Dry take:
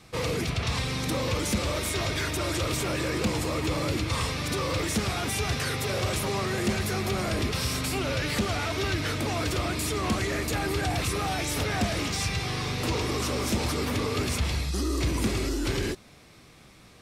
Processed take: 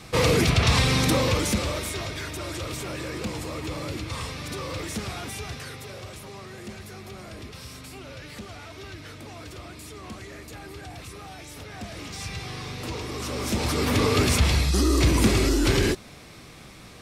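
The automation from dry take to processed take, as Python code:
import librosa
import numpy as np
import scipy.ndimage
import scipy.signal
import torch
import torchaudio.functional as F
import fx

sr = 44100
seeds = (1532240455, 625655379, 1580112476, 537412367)

y = fx.gain(x, sr, db=fx.line((0.99, 8.5), (2.13, -4.5), (5.15, -4.5), (6.13, -12.5), (11.68, -12.5), (12.33, -5.0), (13.1, -5.0), (14.04, 7.0)))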